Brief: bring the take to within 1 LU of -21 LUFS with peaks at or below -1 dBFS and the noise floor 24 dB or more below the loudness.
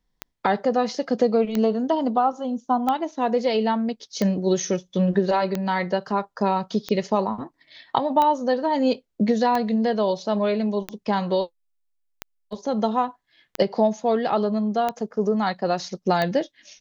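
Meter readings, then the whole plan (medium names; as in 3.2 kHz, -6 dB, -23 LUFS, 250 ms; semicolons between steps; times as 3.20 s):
clicks found 13; loudness -23.5 LUFS; peak level -6.0 dBFS; loudness target -21.0 LUFS
-> de-click; trim +2.5 dB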